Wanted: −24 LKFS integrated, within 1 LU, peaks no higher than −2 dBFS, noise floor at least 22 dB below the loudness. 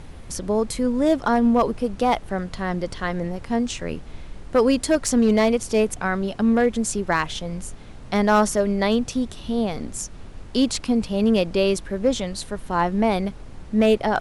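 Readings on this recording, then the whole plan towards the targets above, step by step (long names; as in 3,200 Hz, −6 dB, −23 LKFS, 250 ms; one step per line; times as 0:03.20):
share of clipped samples 0.3%; peaks flattened at −10.5 dBFS; background noise floor −40 dBFS; target noise floor −44 dBFS; integrated loudness −22.0 LKFS; sample peak −10.5 dBFS; target loudness −24.0 LKFS
→ clipped peaks rebuilt −10.5 dBFS
noise reduction from a noise print 6 dB
level −2 dB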